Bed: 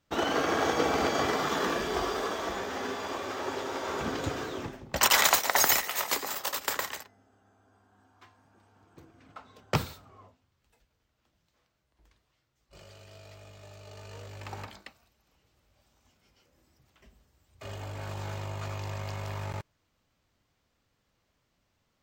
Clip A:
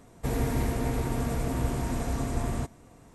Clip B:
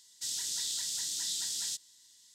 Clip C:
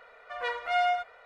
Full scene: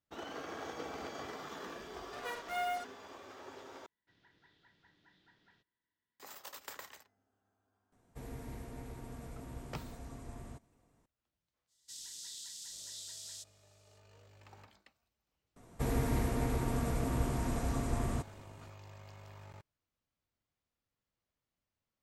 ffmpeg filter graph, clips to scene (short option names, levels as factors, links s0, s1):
-filter_complex "[2:a]asplit=2[s0][s1];[1:a]asplit=2[s2][s3];[0:a]volume=0.15[s4];[3:a]acrusher=bits=5:mix=0:aa=0.5[s5];[s0]lowpass=f=1800:w=0.5412,lowpass=f=1800:w=1.3066[s6];[s1]dynaudnorm=f=110:g=3:m=1.68[s7];[s3]equalizer=f=1200:w=3.9:g=2.5[s8];[s4]asplit=2[s9][s10];[s9]atrim=end=3.864[s11];[s6]atrim=end=2.34,asetpts=PTS-STARTPTS,volume=0.299[s12];[s10]atrim=start=6.196[s13];[s5]atrim=end=1.25,asetpts=PTS-STARTPTS,volume=0.316,afade=t=in:d=0.004:c=hsin,afade=t=out:st=1.246:d=0.004:c=hsin,adelay=1820[s14];[s2]atrim=end=3.14,asetpts=PTS-STARTPTS,volume=0.126,afade=t=in:d=0.004:c=hsin,afade=t=out:st=3.136:d=0.004:c=hsin,adelay=7920[s15];[s7]atrim=end=2.34,asetpts=PTS-STARTPTS,volume=0.15,afade=t=in:d=0.05,afade=t=out:st=2.29:d=0.05,adelay=11670[s16];[s8]atrim=end=3.14,asetpts=PTS-STARTPTS,volume=0.596,afade=t=in:d=0.004:c=hsin,afade=t=out:st=3.136:d=0.004:c=hsin,adelay=686196S[s17];[s11][s12]acrossfade=d=0.004:c1=hsin:c2=hsin[s18];[s18][s13]acrossfade=d=0.004:c1=hsin:c2=hsin[s19];[s19][s14][s15][s16][s17]amix=inputs=5:normalize=0"